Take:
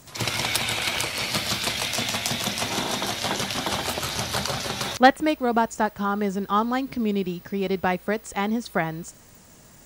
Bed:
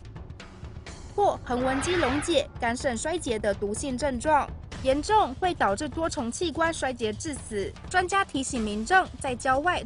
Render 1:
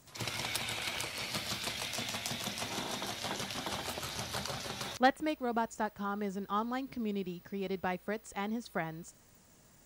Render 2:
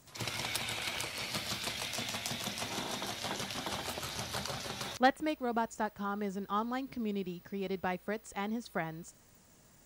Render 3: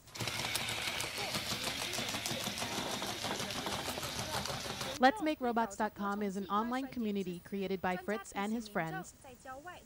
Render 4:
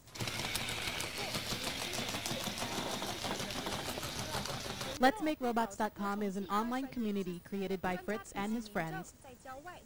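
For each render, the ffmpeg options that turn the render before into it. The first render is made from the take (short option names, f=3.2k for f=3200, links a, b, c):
-af "volume=-11.5dB"
-af anull
-filter_complex "[1:a]volume=-24dB[a];[0:a][a]amix=inputs=2:normalize=0"
-filter_complex "[0:a]aeval=exprs='if(lt(val(0),0),0.708*val(0),val(0))':c=same,asplit=2[a][b];[b]acrusher=samples=28:mix=1:aa=0.000001:lfo=1:lforange=28:lforate=0.28,volume=-11dB[c];[a][c]amix=inputs=2:normalize=0"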